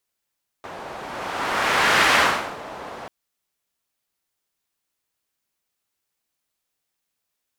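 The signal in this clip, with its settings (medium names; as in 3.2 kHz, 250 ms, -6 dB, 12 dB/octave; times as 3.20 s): whoosh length 2.44 s, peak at 1.50 s, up 1.42 s, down 0.50 s, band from 770 Hz, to 1.6 kHz, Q 1.1, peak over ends 19.5 dB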